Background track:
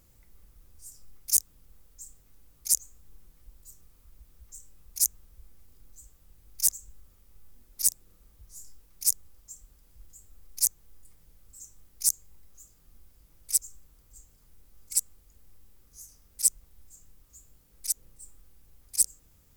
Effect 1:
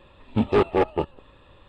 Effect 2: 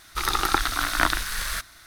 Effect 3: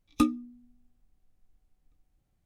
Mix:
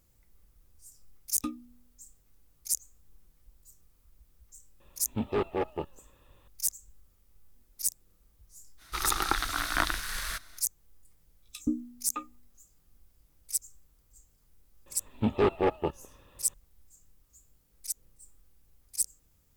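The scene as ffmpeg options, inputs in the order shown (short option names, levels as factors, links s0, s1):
-filter_complex "[3:a]asplit=2[s0][s1];[1:a]asplit=2[s2][s3];[0:a]volume=0.501[s4];[s1]acrossover=split=480|2700[s5][s6][s7];[s5]adelay=120[s8];[s6]adelay=610[s9];[s8][s9][s7]amix=inputs=3:normalize=0[s10];[s0]atrim=end=2.45,asetpts=PTS-STARTPTS,volume=0.266,afade=t=in:d=0.004:c=hsin,afade=t=out:st=2.446:d=0.004:c=hsin,adelay=1240[s11];[s2]atrim=end=1.68,asetpts=PTS-STARTPTS,volume=0.316,afade=t=in:d=0.004:c=hsin,afade=t=out:st=1.676:d=0.004:c=hsin,adelay=4800[s12];[2:a]atrim=end=1.86,asetpts=PTS-STARTPTS,volume=0.501,afade=t=in:d=0.05,afade=t=out:st=1.81:d=0.05,adelay=8770[s13];[s10]atrim=end=2.45,asetpts=PTS-STARTPTS,volume=0.631,afade=t=in:d=0.004:c=hsin,afade=t=out:st=2.446:d=0.004:c=hsin,adelay=11350[s14];[s3]atrim=end=1.68,asetpts=PTS-STARTPTS,volume=0.531,afade=t=in:d=0.004:c=hsin,afade=t=out:st=1.676:d=0.004:c=hsin,adelay=14860[s15];[s4][s11][s12][s13][s14][s15]amix=inputs=6:normalize=0"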